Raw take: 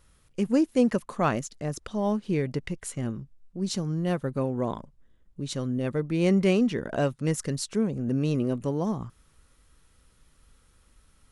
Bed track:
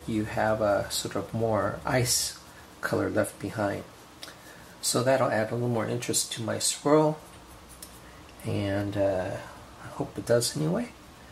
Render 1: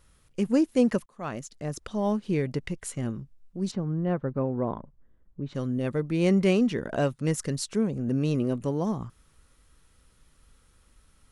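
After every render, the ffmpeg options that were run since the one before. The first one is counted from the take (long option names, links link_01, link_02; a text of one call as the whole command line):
ffmpeg -i in.wav -filter_complex "[0:a]asplit=3[link_01][link_02][link_03];[link_01]afade=type=out:start_time=3.7:duration=0.02[link_04];[link_02]lowpass=1600,afade=type=in:start_time=3.7:duration=0.02,afade=type=out:start_time=5.54:duration=0.02[link_05];[link_03]afade=type=in:start_time=5.54:duration=0.02[link_06];[link_04][link_05][link_06]amix=inputs=3:normalize=0,asplit=2[link_07][link_08];[link_07]atrim=end=1.06,asetpts=PTS-STARTPTS,afade=type=out:start_time=1.056:duration=0.004:curve=hsin[link_09];[link_08]atrim=start=1.06,asetpts=PTS-STARTPTS,afade=type=in:duration=0.98:curve=qsin[link_10];[link_09][link_10]concat=n=2:v=0:a=1" out.wav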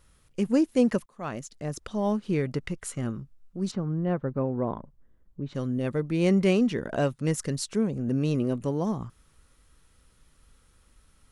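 ffmpeg -i in.wav -filter_complex "[0:a]asettb=1/sr,asplit=3[link_01][link_02][link_03];[link_01]atrim=end=2.194[link_04];[link_02]atrim=start=2.19:end=3.89,asetpts=PTS-STARTPTS,afade=type=in:duration=0.004:curve=qsin,afade=type=out:start_time=1.696:duration=0.004:curve=qsin,equalizer=frequency=1300:width=3.8:gain=6[link_05];[link_03]atrim=start=3.886[link_06];[link_04][link_05]acrossfade=duration=0.004:curve1=hsin:curve2=qsin[link_07];[link_07][link_06]acrossfade=duration=0.004:curve1=qsin:curve2=hsin" out.wav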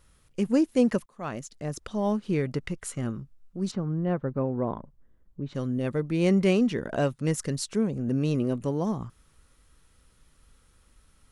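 ffmpeg -i in.wav -af anull out.wav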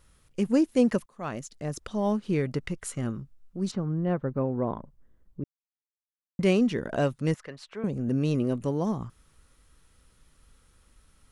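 ffmpeg -i in.wav -filter_complex "[0:a]asettb=1/sr,asplit=3[link_01][link_02][link_03];[link_01]atrim=end=7.344[link_04];[link_02]atrim=start=7.34:end=7.84,asetpts=PTS-STARTPTS,afade=type=in:duration=0.004:curve=qsin,afade=type=out:start_time=0.496:duration=0.004:curve=qsin,acrossover=split=540 3200:gain=0.141 1 0.0631[link_05][link_06][link_07];[link_05][link_06][link_07]amix=inputs=3:normalize=0[link_08];[link_03]atrim=start=7.836[link_09];[link_04][link_08]acrossfade=duration=0.004:curve1=hsin:curve2=qsin[link_10];[link_10][link_09]acrossfade=duration=0.004:curve1=qsin:curve2=hsin,asplit=3[link_11][link_12][link_13];[link_11]atrim=end=5.44,asetpts=PTS-STARTPTS,afade=type=out:start_time=5.436:duration=0.004:curve=hsin[link_14];[link_12]atrim=start=5.44:end=6.39,asetpts=PTS-STARTPTS,volume=0[link_15];[link_13]atrim=start=6.39,asetpts=PTS-STARTPTS,afade=type=in:duration=0.004:curve=hsin[link_16];[link_14][link_15][link_16]concat=n=3:v=0:a=1" out.wav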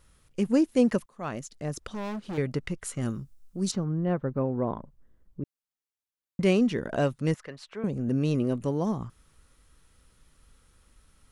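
ffmpeg -i in.wav -filter_complex "[0:a]asettb=1/sr,asplit=3[link_01][link_02][link_03];[link_01]atrim=end=1.884[link_04];[link_02]atrim=start=1.88:end=2.38,asetpts=PTS-STARTPTS,afade=type=in:duration=0.004:curve=qsin,afade=type=out:start_time=0.496:duration=0.004:curve=qsin,asoftclip=type=hard:threshold=-32dB[link_05];[link_03]atrim=start=2.376[link_06];[link_04][link_05]acrossfade=duration=0.004:curve1=hsin:curve2=qsin[link_07];[link_07][link_06]acrossfade=duration=0.004:curve1=qsin:curve2=hsin,asettb=1/sr,asplit=3[link_08][link_09][link_10];[link_08]atrim=end=3.014[link_11];[link_09]atrim=start=3.01:end=3.84,asetpts=PTS-STARTPTS,afade=type=in:duration=0.004:curve=qsin,afade=type=out:start_time=0.826:duration=0.004:curve=qsin,bass=frequency=250:gain=1,treble=frequency=4000:gain=11[link_12];[link_10]atrim=start=3.836[link_13];[link_11][link_12]acrossfade=duration=0.004:curve1=hsin:curve2=qsin[link_14];[link_14][link_13]acrossfade=duration=0.004:curve1=qsin:curve2=hsin" out.wav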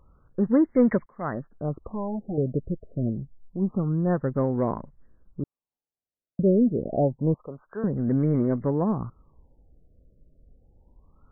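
ffmpeg -i in.wav -filter_complex "[0:a]asplit=2[link_01][link_02];[link_02]asoftclip=type=tanh:threshold=-22dB,volume=-4dB[link_03];[link_01][link_03]amix=inputs=2:normalize=0,afftfilt=real='re*lt(b*sr/1024,680*pow(2300/680,0.5+0.5*sin(2*PI*0.27*pts/sr)))':imag='im*lt(b*sr/1024,680*pow(2300/680,0.5+0.5*sin(2*PI*0.27*pts/sr)))':win_size=1024:overlap=0.75" out.wav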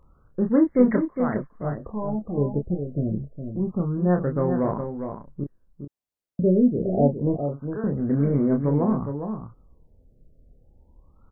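ffmpeg -i in.wav -filter_complex "[0:a]asplit=2[link_01][link_02];[link_02]adelay=28,volume=-5dB[link_03];[link_01][link_03]amix=inputs=2:normalize=0,asplit=2[link_04][link_05];[link_05]aecho=0:1:410:0.422[link_06];[link_04][link_06]amix=inputs=2:normalize=0" out.wav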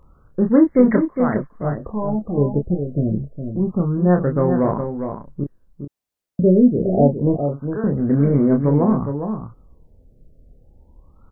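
ffmpeg -i in.wav -af "volume=5.5dB,alimiter=limit=-3dB:level=0:latency=1" out.wav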